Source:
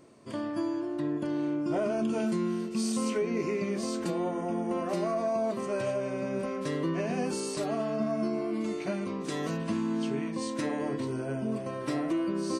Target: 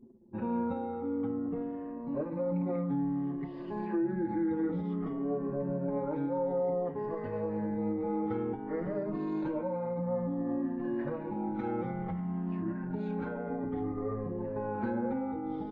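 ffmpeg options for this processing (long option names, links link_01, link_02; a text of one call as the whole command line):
ffmpeg -i in.wav -filter_complex "[0:a]afftfilt=real='re*pow(10,10/40*sin(2*PI*(1.4*log(max(b,1)*sr/1024/100)/log(2)-(-0.7)*(pts-256)/sr)))':imag='im*pow(10,10/40*sin(2*PI*(1.4*log(max(b,1)*sr/1024/100)/log(2)-(-0.7)*(pts-256)/sr)))':win_size=1024:overlap=0.75,lowpass=1800,bandreject=frequency=50:width_type=h:width=6,bandreject=frequency=100:width_type=h:width=6,bandreject=frequency=150:width_type=h:width=6,bandreject=frequency=200:width_type=h:width=6,bandreject=frequency=250:width_type=h:width=6,bandreject=frequency=300:width_type=h:width=6,alimiter=level_in=4.5dB:limit=-24dB:level=0:latency=1:release=177,volume=-4.5dB,asubboost=boost=5:cutoff=62,asetrate=35324,aresample=44100,aemphasis=mode=reproduction:type=75fm,anlmdn=0.00631,asplit=2[link_01][link_02];[link_02]adelay=5.5,afreqshift=-0.27[link_03];[link_01][link_03]amix=inputs=2:normalize=1,volume=6.5dB" out.wav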